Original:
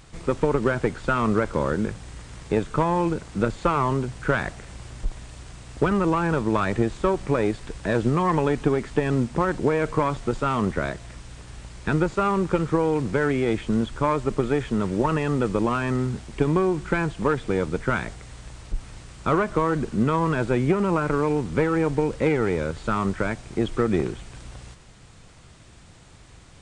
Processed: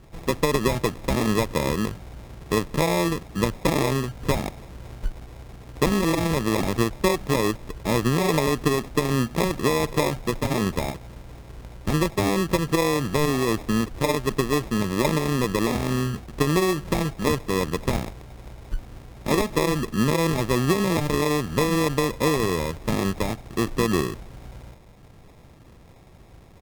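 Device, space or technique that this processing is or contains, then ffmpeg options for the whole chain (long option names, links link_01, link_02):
crushed at another speed: -af "asetrate=35280,aresample=44100,acrusher=samples=37:mix=1:aa=0.000001,asetrate=55125,aresample=44100"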